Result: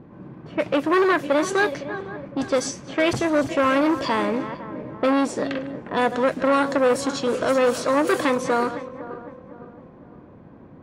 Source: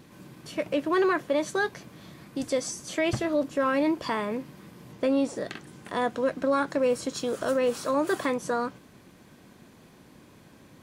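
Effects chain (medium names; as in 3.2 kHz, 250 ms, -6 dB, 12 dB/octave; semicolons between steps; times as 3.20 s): backward echo that repeats 254 ms, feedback 63%, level -13 dB; level-controlled noise filter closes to 880 Hz, open at -22.5 dBFS; transformer saturation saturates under 1.1 kHz; trim +7.5 dB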